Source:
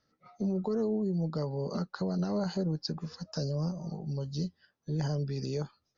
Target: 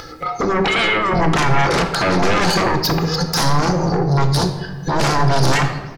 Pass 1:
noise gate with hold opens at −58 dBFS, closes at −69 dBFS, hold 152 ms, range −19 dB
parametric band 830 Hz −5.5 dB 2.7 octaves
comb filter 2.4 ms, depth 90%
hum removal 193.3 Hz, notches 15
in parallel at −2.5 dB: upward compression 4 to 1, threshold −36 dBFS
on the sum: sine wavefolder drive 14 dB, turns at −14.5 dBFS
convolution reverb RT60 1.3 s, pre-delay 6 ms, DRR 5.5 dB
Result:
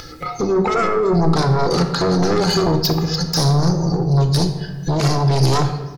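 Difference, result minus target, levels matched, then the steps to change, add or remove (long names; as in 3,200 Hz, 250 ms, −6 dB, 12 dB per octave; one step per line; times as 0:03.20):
1,000 Hz band −3.5 dB
change: parametric band 830 Hz +3.5 dB 2.7 octaves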